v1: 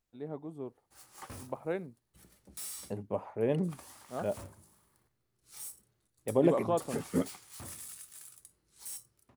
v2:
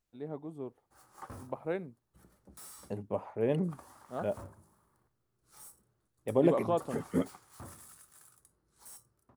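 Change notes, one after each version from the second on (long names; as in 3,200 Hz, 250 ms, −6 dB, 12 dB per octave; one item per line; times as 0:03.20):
background: add high shelf with overshoot 1,800 Hz −8.5 dB, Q 1.5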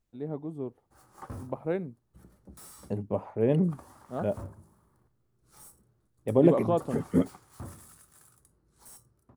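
master: add low-shelf EQ 460 Hz +8.5 dB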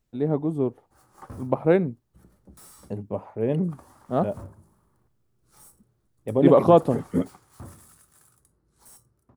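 first voice +11.5 dB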